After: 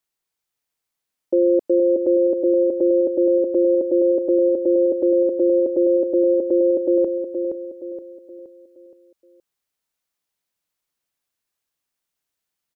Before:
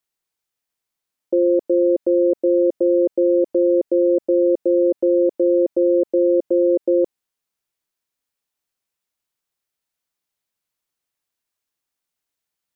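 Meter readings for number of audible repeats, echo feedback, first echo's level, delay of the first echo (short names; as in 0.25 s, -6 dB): 4, 42%, -7.0 dB, 0.471 s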